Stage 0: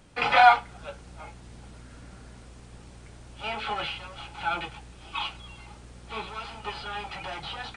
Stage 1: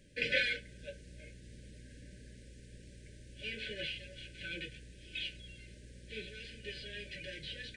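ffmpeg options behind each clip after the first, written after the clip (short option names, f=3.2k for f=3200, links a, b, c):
-af "afftfilt=real='re*(1-between(b*sr/4096,620,1500))':imag='im*(1-between(b*sr/4096,620,1500))':win_size=4096:overlap=0.75,volume=-6dB"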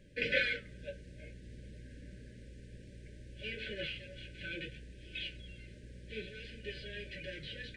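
-af "highshelf=f=4k:g=-11.5,flanger=delay=1.8:depth=8.4:regen=-81:speed=0.58:shape=sinusoidal,volume=7dB"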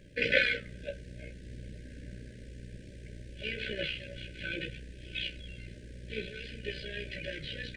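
-af "tremolo=f=62:d=0.571,volume=7.5dB"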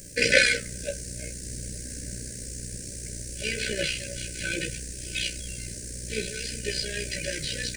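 -af "aexciter=amount=9.2:drive=8.9:freq=5.1k,volume=6.5dB"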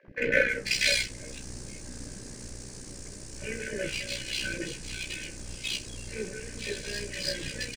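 -filter_complex "[0:a]acrossover=split=210|1300|3700[a][b][c][d];[a]acrusher=bits=5:dc=4:mix=0:aa=0.000001[e];[e][b][c][d]amix=inputs=4:normalize=0,acrossover=split=550|2200[f][g][h];[f]adelay=30[i];[h]adelay=490[j];[i][g][j]amix=inputs=3:normalize=0,adynamicsmooth=sensitivity=5.5:basefreq=5.1k"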